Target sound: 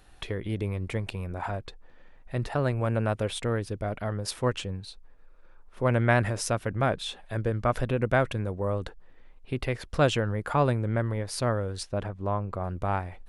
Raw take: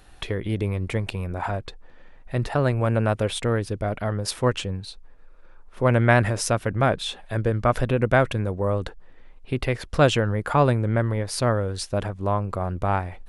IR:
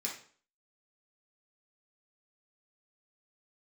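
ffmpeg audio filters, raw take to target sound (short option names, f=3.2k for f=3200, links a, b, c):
-filter_complex "[0:a]asettb=1/sr,asplit=3[a][b][c];[a]atrim=end=11.834[d];[b]atrim=start=11.83:end=12.64,asetpts=PTS-STARTPTS,afade=t=in:d=0.004:c=qsin,afade=t=out:st=0.806:d=0.004:c=qsin,aemphasis=mode=reproduction:type=50kf[e];[c]atrim=start=12.636[f];[d][e]acrossfade=d=0.004:c1=hsin:c2=qsin[g];[g][f]acrossfade=d=0.004:c1=qsin:c2=hsin,volume=-5dB"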